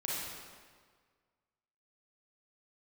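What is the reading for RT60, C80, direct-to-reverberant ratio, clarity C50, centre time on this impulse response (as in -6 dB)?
1.7 s, 0.0 dB, -6.0 dB, -3.5 dB, 0.118 s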